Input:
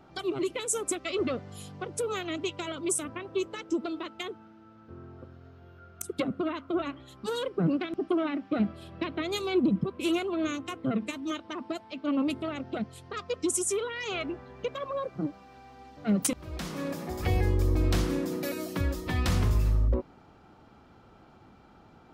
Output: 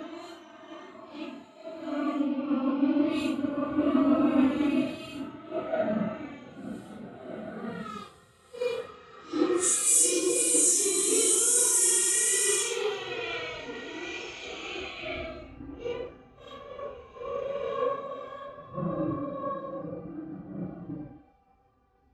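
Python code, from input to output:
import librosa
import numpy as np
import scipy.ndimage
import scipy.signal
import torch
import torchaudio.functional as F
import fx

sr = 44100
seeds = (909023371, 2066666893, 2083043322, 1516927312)

y = fx.rev_gated(x, sr, seeds[0], gate_ms=370, shape='rising', drr_db=-2.5)
y = fx.paulstretch(y, sr, seeds[1], factor=5.4, window_s=0.05, from_s=11.71)
y = fx.band_widen(y, sr, depth_pct=100)
y = y * librosa.db_to_amplitude(-3.5)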